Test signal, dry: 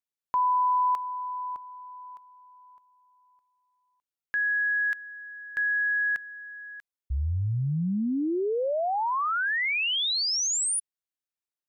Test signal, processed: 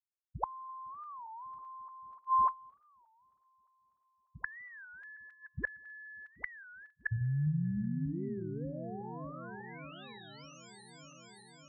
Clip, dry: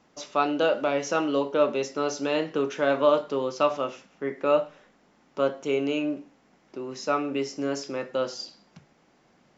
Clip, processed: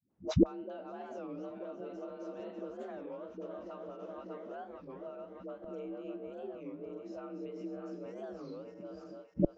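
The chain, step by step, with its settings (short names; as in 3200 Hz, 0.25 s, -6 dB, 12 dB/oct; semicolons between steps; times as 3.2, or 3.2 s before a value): regenerating reverse delay 0.298 s, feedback 74%, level -5 dB; compressor 10:1, threshold -26 dBFS; bell 110 Hz +4 dB 1.1 oct; gate -36 dBFS, range -36 dB; dispersion highs, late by 0.105 s, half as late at 310 Hz; frequency shift +48 Hz; flipped gate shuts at -31 dBFS, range -30 dB; tilt -4.5 dB/oct; record warp 33 1/3 rpm, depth 250 cents; gain +12 dB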